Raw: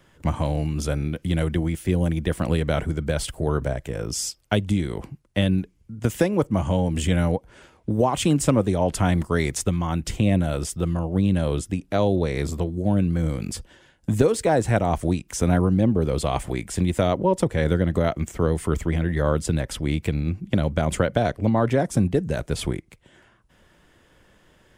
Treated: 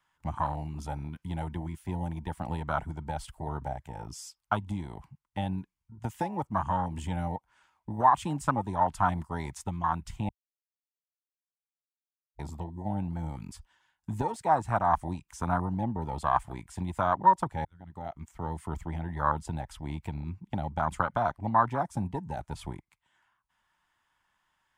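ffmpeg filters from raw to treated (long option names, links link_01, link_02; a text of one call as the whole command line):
ffmpeg -i in.wav -filter_complex "[0:a]asplit=4[link_01][link_02][link_03][link_04];[link_01]atrim=end=10.29,asetpts=PTS-STARTPTS,afade=type=out:start_time=10.286:duration=0.004:curve=hsin[link_05];[link_02]atrim=start=10.29:end=12.39,asetpts=PTS-STARTPTS,volume=0[link_06];[link_03]atrim=start=12.39:end=17.65,asetpts=PTS-STARTPTS,afade=type=in:duration=0.004:curve=hsin,afade=type=out:start_time=5.256:duration=0.004:curve=hsin[link_07];[link_04]atrim=start=17.65,asetpts=PTS-STARTPTS,afade=type=in:duration=0.97[link_08];[link_05][link_06][link_07][link_08]concat=n=4:v=0:a=1,afwtdn=0.0631,lowshelf=frequency=670:width_type=q:width=3:gain=-11" out.wav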